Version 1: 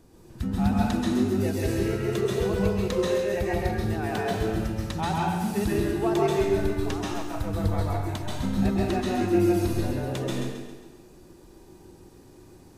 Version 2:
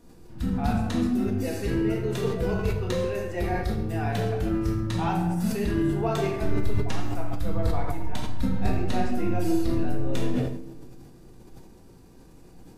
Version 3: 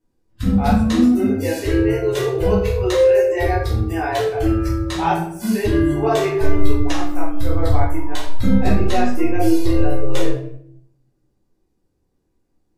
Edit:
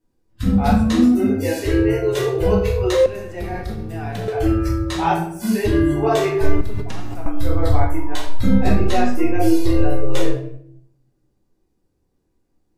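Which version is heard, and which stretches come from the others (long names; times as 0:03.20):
3
0:03.06–0:04.28: punch in from 2
0:06.61–0:07.26: punch in from 2
not used: 1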